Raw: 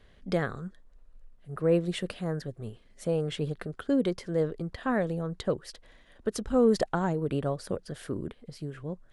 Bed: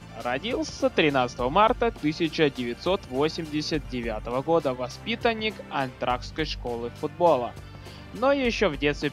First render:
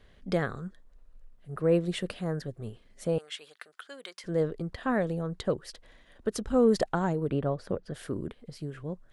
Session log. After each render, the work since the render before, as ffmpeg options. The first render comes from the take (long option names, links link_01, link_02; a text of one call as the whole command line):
ffmpeg -i in.wav -filter_complex "[0:a]asettb=1/sr,asplit=3[link_01][link_02][link_03];[link_01]atrim=end=3.184[link_04];[link_02]atrim=start=3.18:end=4.24,asetpts=PTS-STARTPTS,afade=type=in:duration=0.004:curve=qsin,afade=type=out:start_time=1.056:duration=0.004:curve=qsin,highpass=1400[link_05];[link_03]atrim=start=4.236[link_06];[link_04][link_05]acrossfade=duration=0.004:curve1=hsin:curve2=qsin[link_07];[link_07][link_06]acrossfade=duration=0.004:curve1=qsin:curve2=hsin,asettb=1/sr,asplit=3[link_08][link_09][link_10];[link_08]atrim=end=7.304[link_11];[link_09]atrim=start=7.3:end=7.93,asetpts=PTS-STARTPTS,afade=type=in:duration=0.004:curve=qsin,afade=type=out:start_time=0.626:duration=0.004:curve=qsin,aemphasis=mode=reproduction:type=75fm[link_12];[link_10]atrim=start=7.926[link_13];[link_11][link_12]acrossfade=duration=0.004:curve1=hsin:curve2=qsin[link_14];[link_14][link_13]acrossfade=duration=0.004:curve1=qsin:curve2=hsin" out.wav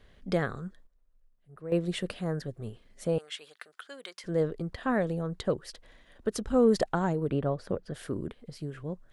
ffmpeg -i in.wav -filter_complex "[0:a]asplit=3[link_01][link_02][link_03];[link_01]atrim=end=0.87,asetpts=PTS-STARTPTS,afade=type=out:start_time=0.51:duration=0.36:curve=log:silence=0.211349[link_04];[link_02]atrim=start=0.87:end=1.72,asetpts=PTS-STARTPTS,volume=-13.5dB[link_05];[link_03]atrim=start=1.72,asetpts=PTS-STARTPTS,afade=type=in:duration=0.36:curve=log:silence=0.211349[link_06];[link_04][link_05][link_06]concat=n=3:v=0:a=1" out.wav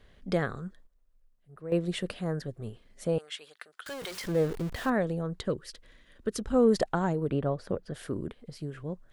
ffmpeg -i in.wav -filter_complex "[0:a]asettb=1/sr,asplit=3[link_01][link_02][link_03];[link_01]atrim=end=3.864[link_04];[link_02]atrim=start=3.86:end=4.9,asetpts=PTS-STARTPTS,afade=type=in:duration=0.004:curve=qsin,afade=type=out:start_time=1.036:duration=0.004:curve=qsin,aeval=exprs='val(0)+0.5*0.015*sgn(val(0))':channel_layout=same[link_05];[link_03]atrim=start=4.896[link_06];[link_04][link_05]acrossfade=duration=0.004:curve1=hsin:curve2=qsin[link_07];[link_07][link_06]acrossfade=duration=0.004:curve1=qsin:curve2=hsin,asettb=1/sr,asplit=3[link_08][link_09][link_10];[link_08]atrim=end=5.444[link_11];[link_09]atrim=start=5.44:end=6.4,asetpts=PTS-STARTPTS,afade=type=in:duration=0.004:curve=qsin,afade=type=out:start_time=0.956:duration=0.004:curve=qsin,equalizer=frequency=770:width_type=o:width=0.69:gain=-10[link_12];[link_10]atrim=start=6.396[link_13];[link_11][link_12]acrossfade=duration=0.004:curve1=hsin:curve2=qsin[link_14];[link_14][link_13]acrossfade=duration=0.004:curve1=qsin:curve2=hsin" out.wav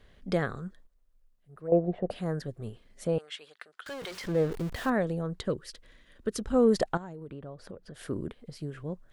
ffmpeg -i in.wav -filter_complex "[0:a]asplit=3[link_01][link_02][link_03];[link_01]afade=type=out:start_time=1.67:duration=0.02[link_04];[link_02]lowpass=frequency=720:width_type=q:width=6.7,afade=type=in:start_time=1.67:duration=0.02,afade=type=out:start_time=2.1:duration=0.02[link_05];[link_03]afade=type=in:start_time=2.1:duration=0.02[link_06];[link_04][link_05][link_06]amix=inputs=3:normalize=0,asettb=1/sr,asplit=3[link_07][link_08][link_09];[link_07]atrim=end=3.074[link_10];[link_08]atrim=start=3.07:end=4.52,asetpts=PTS-STARTPTS,afade=type=in:duration=0.004:curve=qsin,afade=type=out:start_time=1.446:duration=0.004:curve=qsin,highshelf=frequency=7400:gain=-9.5[link_11];[link_09]atrim=start=4.516[link_12];[link_10][link_11]acrossfade=duration=0.004:curve1=hsin:curve2=qsin[link_13];[link_13][link_12]acrossfade=duration=0.004:curve1=qsin:curve2=hsin,asettb=1/sr,asplit=3[link_14][link_15][link_16];[link_14]atrim=end=6.974[link_17];[link_15]atrim=start=6.97:end=8.01,asetpts=PTS-STARTPTS,afade=type=in:duration=0.004:curve=qsin,afade=type=out:start_time=1.036:duration=0.004:curve=qsin,acompressor=threshold=-43dB:ratio=3:attack=3.2:release=140:knee=1:detection=peak[link_18];[link_16]atrim=start=8.006[link_19];[link_17][link_18]acrossfade=duration=0.004:curve1=hsin:curve2=qsin[link_20];[link_20][link_19]acrossfade=duration=0.004:curve1=qsin:curve2=hsin" out.wav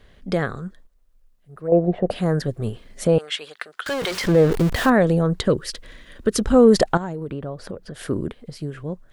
ffmpeg -i in.wav -filter_complex "[0:a]dynaudnorm=framelen=470:gausssize=9:maxgain=8dB,asplit=2[link_01][link_02];[link_02]alimiter=limit=-17.5dB:level=0:latency=1:release=55,volume=1dB[link_03];[link_01][link_03]amix=inputs=2:normalize=0" out.wav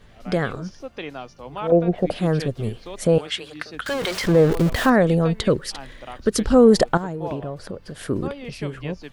ffmpeg -i in.wav -i bed.wav -filter_complex "[1:a]volume=-12dB[link_01];[0:a][link_01]amix=inputs=2:normalize=0" out.wav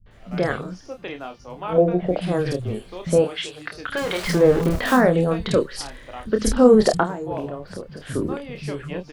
ffmpeg -i in.wav -filter_complex "[0:a]asplit=2[link_01][link_02];[link_02]adelay=28,volume=-7dB[link_03];[link_01][link_03]amix=inputs=2:normalize=0,acrossover=split=170|4100[link_04][link_05][link_06];[link_05]adelay=60[link_07];[link_06]adelay=110[link_08];[link_04][link_07][link_08]amix=inputs=3:normalize=0" out.wav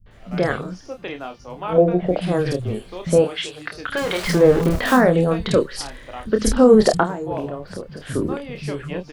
ffmpeg -i in.wav -af "volume=2dB,alimiter=limit=-2dB:level=0:latency=1" out.wav